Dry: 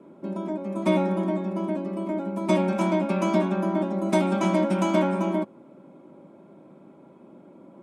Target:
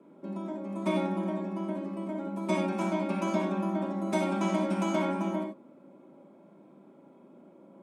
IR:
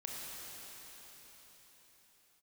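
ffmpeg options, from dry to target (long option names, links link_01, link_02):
-filter_complex "[0:a]highpass=150[link_01];[1:a]atrim=start_sample=2205,atrim=end_sample=4410[link_02];[link_01][link_02]afir=irnorm=-1:irlink=0,volume=-1.5dB"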